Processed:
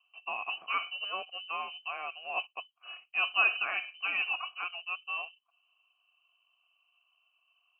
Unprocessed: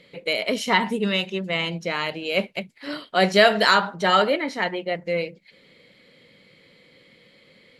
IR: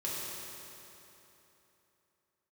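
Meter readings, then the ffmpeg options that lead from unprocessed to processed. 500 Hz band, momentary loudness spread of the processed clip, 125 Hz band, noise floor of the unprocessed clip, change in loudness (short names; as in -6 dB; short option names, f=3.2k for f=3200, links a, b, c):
-25.5 dB, 12 LU, under -40 dB, -56 dBFS, -10.5 dB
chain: -filter_complex "[0:a]adynamicsmooth=sensitivity=4.5:basefreq=760,lowpass=f=2.7k:t=q:w=0.5098,lowpass=f=2.7k:t=q:w=0.6013,lowpass=f=2.7k:t=q:w=0.9,lowpass=f=2.7k:t=q:w=2.563,afreqshift=-3200,asplit=3[a][b][c];[a]bandpass=f=730:t=q:w=8,volume=0dB[d];[b]bandpass=f=1.09k:t=q:w=8,volume=-6dB[e];[c]bandpass=f=2.44k:t=q:w=8,volume=-9dB[f];[d][e][f]amix=inputs=3:normalize=0"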